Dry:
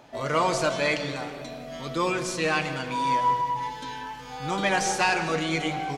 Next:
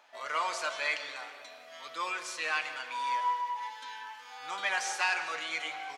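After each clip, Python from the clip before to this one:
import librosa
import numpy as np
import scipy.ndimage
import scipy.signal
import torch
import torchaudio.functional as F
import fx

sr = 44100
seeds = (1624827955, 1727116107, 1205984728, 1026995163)

y = scipy.signal.sosfilt(scipy.signal.butter(2, 1300.0, 'highpass', fs=sr, output='sos'), x)
y = fx.high_shelf(y, sr, hz=2700.0, db=-8.5)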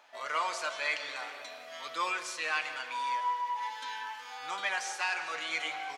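y = fx.rider(x, sr, range_db=4, speed_s=0.5)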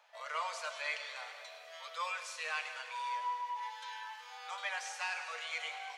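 y = scipy.signal.sosfilt(scipy.signal.cheby1(10, 1.0, 450.0, 'highpass', fs=sr, output='sos'), x)
y = fx.echo_wet_highpass(y, sr, ms=102, feedback_pct=74, hz=2300.0, wet_db=-11.5)
y = y * librosa.db_to_amplitude(-5.5)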